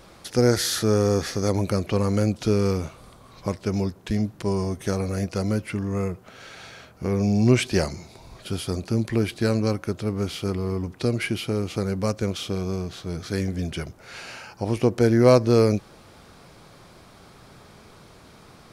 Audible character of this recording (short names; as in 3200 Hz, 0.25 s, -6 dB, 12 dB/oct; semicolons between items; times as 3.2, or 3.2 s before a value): noise floor -50 dBFS; spectral tilt -6.5 dB/oct